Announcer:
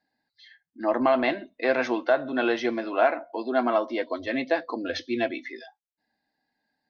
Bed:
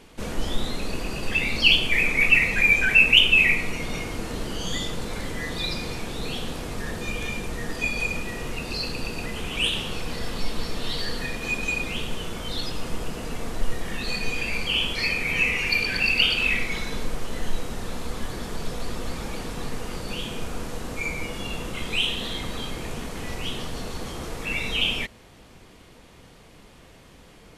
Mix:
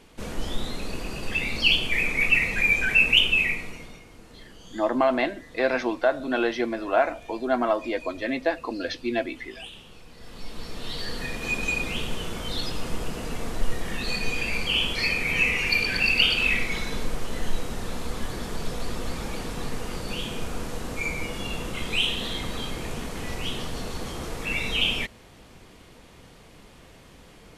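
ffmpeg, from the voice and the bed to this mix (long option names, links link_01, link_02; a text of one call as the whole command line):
ffmpeg -i stem1.wav -i stem2.wav -filter_complex "[0:a]adelay=3950,volume=0dB[link_01];[1:a]volume=14.5dB,afade=type=out:start_time=3.2:duration=0.8:silence=0.188365,afade=type=in:start_time=10.15:duration=1.44:silence=0.133352[link_02];[link_01][link_02]amix=inputs=2:normalize=0" out.wav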